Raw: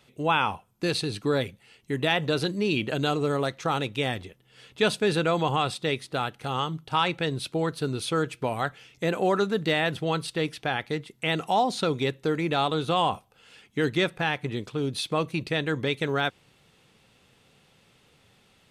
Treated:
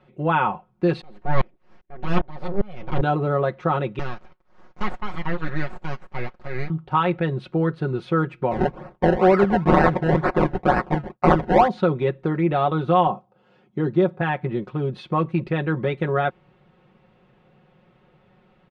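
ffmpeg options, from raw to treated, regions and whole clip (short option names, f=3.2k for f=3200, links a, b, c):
-filter_complex "[0:a]asettb=1/sr,asplit=3[a][b][c];[a]atrim=end=1.014[d];[b]atrim=start=1.01:end=3.02,asetpts=PTS-STARTPTS,afade=t=in:d=0.004:c=qsin,afade=t=out:st=2.006:d=0.004:c=qsin,acontrast=82,aeval=exprs='abs(val(0))':c=same,aeval=exprs='val(0)*pow(10,-31*if(lt(mod(-2.5*n/s,1),2*abs(-2.5)/1000),1-mod(-2.5*n/s,1)/(2*abs(-2.5)/1000),(mod(-2.5*n/s,1)-2*abs(-2.5)/1000)/(1-2*abs(-2.5)/1000))/20)':c=same[e];[c]atrim=start=3.016[f];[d][e]acrossfade=d=0.004:c1=hsin:c2=qsin[g];[g][f]acrossfade=d=0.004:c1=qsin:c2=hsin,asettb=1/sr,asplit=3[h][i][j];[h]atrim=end=3.994[k];[i]atrim=start=3.99:end=6.7,asetpts=PTS-STARTPTS,afade=t=in:d=0.004:c=qsin,afade=t=out:st=2.706:d=0.004:c=qsin,highpass=680,lowpass=6k,aeval=exprs='abs(val(0))':c=same[l];[j]atrim=start=6.696[m];[k][l]acrossfade=d=0.004:c1=hsin:c2=qsin[n];[n][m]acrossfade=d=0.004:c1=qsin:c2=hsin,asettb=1/sr,asplit=3[o][p][q];[o]atrim=end=8.514[r];[p]atrim=start=8.51:end=11.68,asetpts=PTS-STARTPTS,afade=t=in:d=0.004:c=qsin,afade=t=out:st=3.166:d=0.004:c=qsin,agate=range=-33dB:threshold=-49dB:ratio=3:release=100:detection=peak,equalizer=f=5.1k:t=o:w=2.3:g=13,acrusher=samples=26:mix=1:aa=0.000001:lfo=1:lforange=26:lforate=2.1[s];[q]atrim=start=11.676[t];[r][s]acrossfade=d=0.004:c1=hsin:c2=qsin[u];[u][t]acrossfade=d=0.004:c1=qsin:c2=hsin,asettb=1/sr,asplit=3[v][w][x];[v]atrim=end=13.074[y];[w]atrim=start=13.07:end=14.21,asetpts=PTS-STARTPTS,afade=t=in:d=0.004:c=qsin,afade=t=out:st=1.136:d=0.004:c=qsin,highpass=110,lowpass=7.5k,equalizer=f=2.1k:t=o:w=1.5:g=-11[z];[x]atrim=start=14.206[aa];[y][z]acrossfade=d=0.004:c1=hsin:c2=qsin[ab];[ab][aa]acrossfade=d=0.004:c1=qsin:c2=hsin,lowpass=1.4k,aecho=1:1:5.5:0.76,volume=4dB"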